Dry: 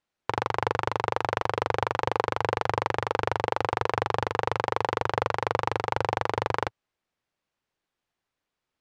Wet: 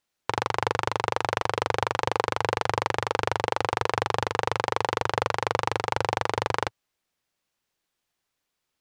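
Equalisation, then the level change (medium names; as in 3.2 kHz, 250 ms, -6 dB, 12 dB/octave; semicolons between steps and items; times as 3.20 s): treble shelf 3.7 kHz +10 dB; 0.0 dB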